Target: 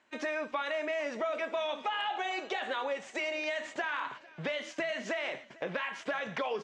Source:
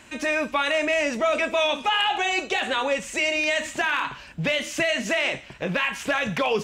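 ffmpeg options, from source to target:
-filter_complex "[0:a]aemphasis=mode=reproduction:type=bsi,agate=range=-14dB:threshold=-35dB:ratio=16:detection=peak,highpass=460,lowpass=7.1k,equalizer=f=2.6k:w=5.7:g=-6.5,acompressor=threshold=-30dB:ratio=3,asplit=2[a][b];[b]aecho=0:1:449|898|1347|1796:0.075|0.0412|0.0227|0.0125[c];[a][c]amix=inputs=2:normalize=0,volume=-2.5dB"

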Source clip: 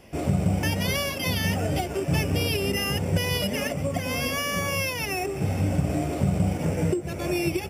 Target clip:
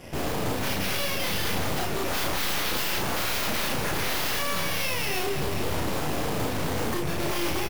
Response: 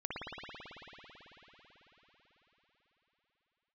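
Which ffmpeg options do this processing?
-filter_complex "[0:a]asettb=1/sr,asplit=3[a][b][c];[a]atrim=end=2.064[d];[b]atrim=start=2.06:end=4.39,asetpts=PTS-STARTPTS,afade=t=in:d=0.004:c=qsin,afade=t=out:st=2.326:d=0.004:c=qsin,acontrast=32[e];[c]atrim=start=4.386[f];[d][e]acrossfade=d=0.004:c1=hsin:c2=qsin[g];[g][f]acrossfade=d=0.004:c1=qsin:c2=hsin,aeval=exprs='0.0501*(abs(mod(val(0)/0.0501+3,4)-2)-1)':c=same,aeval=exprs='0.0501*(cos(1*acos(clip(val(0)/0.0501,-1,1)))-cos(1*PI/2))+0.00891*(cos(5*acos(clip(val(0)/0.0501,-1,1)))-cos(5*PI/2))+0.0141*(cos(8*acos(clip(val(0)/0.0501,-1,1)))-cos(8*PI/2))':c=same,asplit=2[h][i];[i]adelay=35,volume=-3dB[j];[h][j]amix=inputs=2:normalize=0,aecho=1:1:208:0.282"

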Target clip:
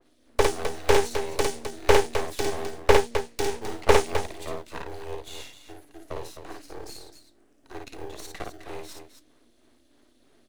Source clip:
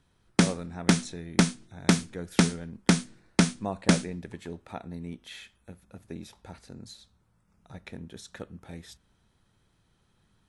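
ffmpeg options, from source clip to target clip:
-filter_complex "[0:a]asettb=1/sr,asplit=3[a][b][c];[a]atrim=end=2.214[d];[b]atrim=start=2.21:end=3.92,asetpts=PTS-STARTPTS,afade=t=in:d=0.004:c=qsin,afade=t=out:st=1.706:d=0.004:c=qsin,highshelf=f=4.7k:g=-7[e];[c]atrim=start=3.916[f];[d][e]acrossfade=d=0.004:c1=hsin:c2=qsin[g];[g][f]acrossfade=d=0.004:c1=qsin:c2=hsin,acrossover=split=130|2200[h][i][j];[h]acrusher=samples=30:mix=1:aa=0.000001[k];[i]tremolo=f=3.1:d=0.95[l];[j]acompressor=threshold=-43dB:ratio=6[m];[k][l][m]amix=inputs=3:normalize=0,afreqshift=230,aeval=exprs='max(val(0),0)':c=same,asplit=2[n][o];[o]aecho=0:1:55.39|259.5:0.708|0.355[p];[n][p]amix=inputs=2:normalize=0,adynamicequalizer=threshold=0.00631:dfrequency=2100:dqfactor=0.7:tfrequency=2100:tqfactor=0.7:attack=5:release=100:ratio=0.375:range=3:mode=boostabove:tftype=highshelf,volume=8dB"

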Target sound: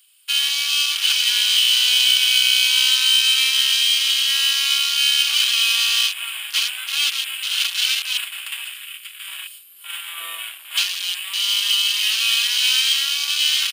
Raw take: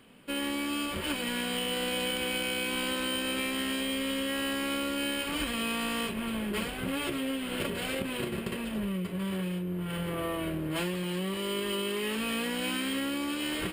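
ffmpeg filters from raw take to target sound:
-filter_complex "[0:a]highpass=f=1.5k:t=q:w=1.8,asplit=2[a][b];[b]aecho=0:1:569:0.158[c];[a][c]amix=inputs=2:normalize=0,afwtdn=0.01,aexciter=amount=7:drive=7.5:freq=2.8k,highshelf=f=3.9k:g=8"

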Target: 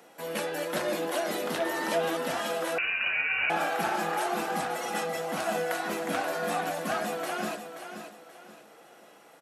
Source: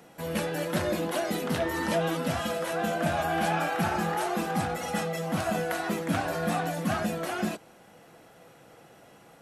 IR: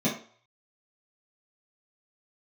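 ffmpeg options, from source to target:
-filter_complex "[0:a]highpass=330,aecho=1:1:530|1060|1590|2120:0.355|0.114|0.0363|0.0116,asettb=1/sr,asplit=3[a][b][c];[a]atrim=end=2.784[d];[b]atrim=start=2.78:end=3.5,asetpts=PTS-STARTPTS,afade=t=in:d=0.004:c=qsin,afade=t=out:st=0.716:d=0.004:c=qsin,lowpass=f=2.6k:t=q:w=0.5098,lowpass=f=2.6k:t=q:w=0.6013,lowpass=f=2.6k:t=q:w=0.9,lowpass=f=2.6k:t=q:w=2.563,afreqshift=-3100[e];[c]atrim=start=3.496[f];[d][e]acrossfade=d=0.004:c1=hsin:c2=qsin[g];[g][f]acrossfade=d=0.004:c1=qsin:c2=hsin"

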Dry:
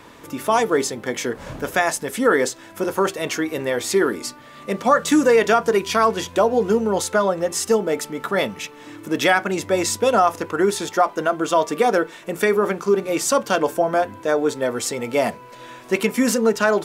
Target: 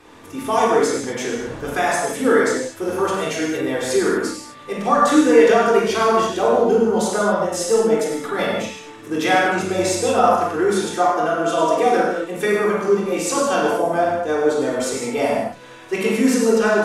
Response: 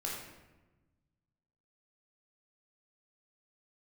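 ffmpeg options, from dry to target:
-filter_complex "[1:a]atrim=start_sample=2205,afade=t=out:st=0.19:d=0.01,atrim=end_sample=8820,asetrate=24696,aresample=44100[a];[0:a][a]afir=irnorm=-1:irlink=0,volume=-5dB"

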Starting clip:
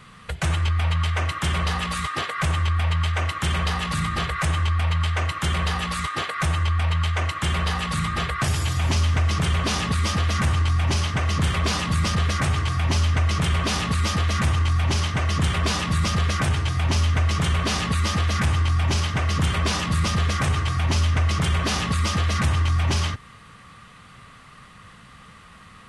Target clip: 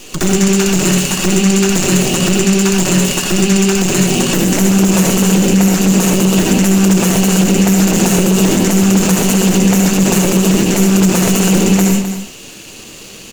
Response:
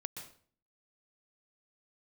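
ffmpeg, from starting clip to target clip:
-filter_complex "[0:a]equalizer=f=2.9k:t=o:w=0.42:g=11,acrossover=split=100|1100|2500[a][b][c][d];[c]acompressor=threshold=-42dB:ratio=20[e];[d]asoftclip=type=tanh:threshold=-22.5dB[f];[a][b][e][f]amix=inputs=4:normalize=0,atempo=0.83,aeval=exprs='max(val(0),0)':c=same,aecho=1:1:605:0.224[g];[1:a]atrim=start_sample=2205,asetrate=30429,aresample=44100[h];[g][h]afir=irnorm=-1:irlink=0,asetrate=103194,aresample=44100,alimiter=level_in=16.5dB:limit=-1dB:release=50:level=0:latency=1,volume=-1dB"

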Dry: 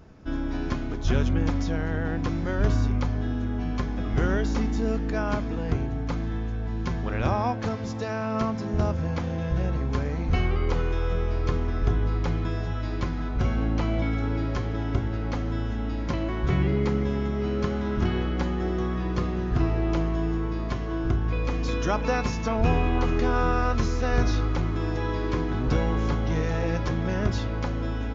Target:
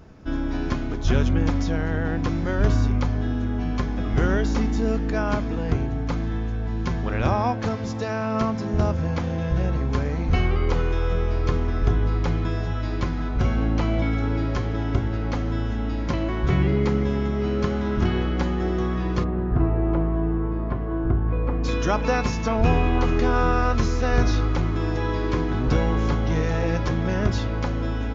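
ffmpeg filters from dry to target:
-filter_complex "[0:a]asplit=3[a][b][c];[a]afade=t=out:st=19.23:d=0.02[d];[b]lowpass=1.3k,afade=t=in:st=19.23:d=0.02,afade=t=out:st=21.63:d=0.02[e];[c]afade=t=in:st=21.63:d=0.02[f];[d][e][f]amix=inputs=3:normalize=0,volume=3dB"

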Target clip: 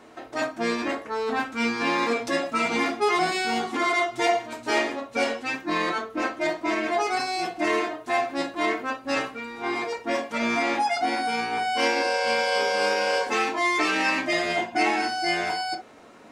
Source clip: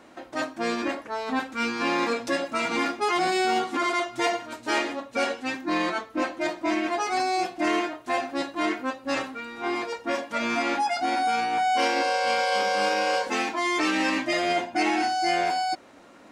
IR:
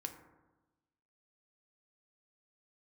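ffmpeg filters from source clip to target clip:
-filter_complex "[1:a]atrim=start_sample=2205,atrim=end_sample=4410,asetrate=61740,aresample=44100[a];[0:a][a]afir=irnorm=-1:irlink=0,volume=7dB"

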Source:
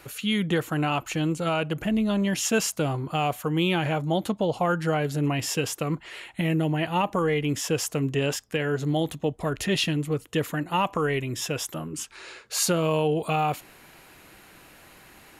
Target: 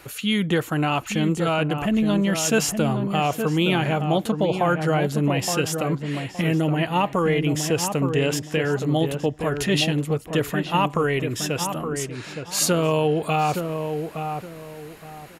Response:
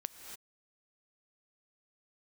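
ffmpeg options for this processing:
-filter_complex "[0:a]asplit=2[a][b];[b]adelay=868,lowpass=f=1.4k:p=1,volume=-6dB,asplit=2[c][d];[d]adelay=868,lowpass=f=1.4k:p=1,volume=0.28,asplit=2[e][f];[f]adelay=868,lowpass=f=1.4k:p=1,volume=0.28,asplit=2[g][h];[h]adelay=868,lowpass=f=1.4k:p=1,volume=0.28[i];[a][c][e][g][i]amix=inputs=5:normalize=0,volume=3dB"

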